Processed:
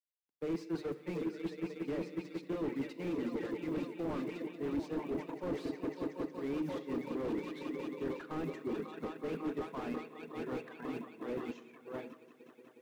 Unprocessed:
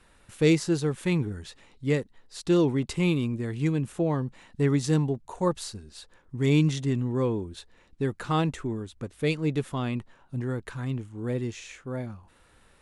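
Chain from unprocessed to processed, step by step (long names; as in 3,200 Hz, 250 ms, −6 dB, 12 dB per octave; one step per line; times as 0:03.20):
low-pass filter 2,900 Hz 12 dB per octave
mains-hum notches 50/100/150/200/250/300/350/400/450 Hz
on a send: echo that builds up and dies away 182 ms, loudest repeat 5, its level −11 dB
on the sum: downward expander −23 dBFS
reverb reduction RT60 1.2 s
reversed playback
downward compressor 16 to 1, threshold −32 dBFS, peak gain reduction 16.5 dB
reversed playback
log-companded quantiser 8 bits
high-pass filter 230 Hz 24 dB per octave
rectangular room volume 1,700 cubic metres, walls mixed, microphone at 0.32 metres
slew-rate limiting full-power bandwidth 7 Hz
level +2.5 dB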